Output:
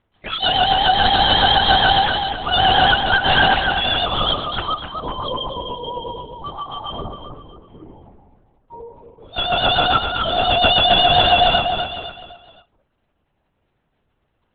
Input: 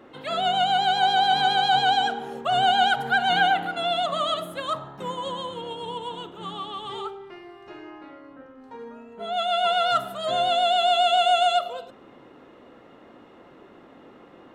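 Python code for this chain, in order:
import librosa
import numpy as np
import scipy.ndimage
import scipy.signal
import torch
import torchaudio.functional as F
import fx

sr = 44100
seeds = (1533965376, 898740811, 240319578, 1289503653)

p1 = fx.noise_reduce_blind(x, sr, reduce_db=26)
p2 = fx.high_shelf(p1, sr, hz=2700.0, db=9.5)
p3 = (np.mod(10.0 ** (10.0 / 20.0) * p2 + 1.0, 2.0) - 1.0) / 10.0 ** (10.0 / 20.0)
p4 = p2 + F.gain(torch.from_numpy(p3), -7.0).numpy()
p5 = fx.dmg_crackle(p4, sr, seeds[0], per_s=26.0, level_db=-50.0)
p6 = p5 + fx.echo_feedback(p5, sr, ms=255, feedback_pct=37, wet_db=-6.0, dry=0)
p7 = fx.lpc_vocoder(p6, sr, seeds[1], excitation='whisper', order=8)
y = F.gain(torch.from_numpy(p7), 1.0).numpy()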